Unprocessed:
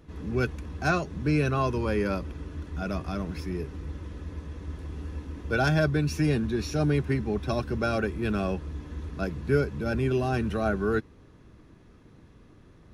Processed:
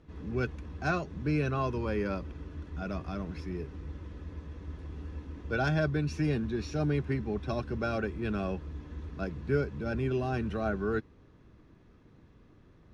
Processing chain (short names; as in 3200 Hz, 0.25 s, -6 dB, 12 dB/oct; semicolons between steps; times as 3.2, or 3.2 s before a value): air absorption 72 m; gain -4.5 dB